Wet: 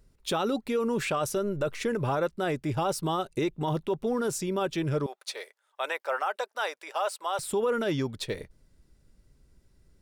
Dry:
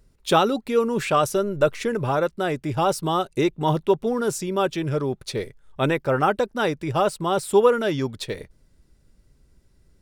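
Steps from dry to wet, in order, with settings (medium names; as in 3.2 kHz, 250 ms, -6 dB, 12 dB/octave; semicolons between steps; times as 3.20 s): 5.06–7.39 s: high-pass 610 Hz 24 dB/octave; peak limiter -16.5 dBFS, peak gain reduction 10.5 dB; trim -3 dB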